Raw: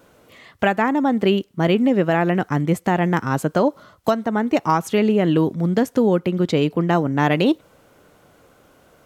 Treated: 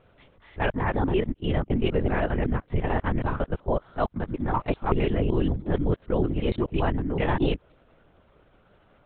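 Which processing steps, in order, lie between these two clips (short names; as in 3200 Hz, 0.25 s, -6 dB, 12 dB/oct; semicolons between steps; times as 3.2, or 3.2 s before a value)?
local time reversal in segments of 0.189 s; bell 63 Hz +11.5 dB 1.3 oct; LPC vocoder at 8 kHz whisper; gain -7 dB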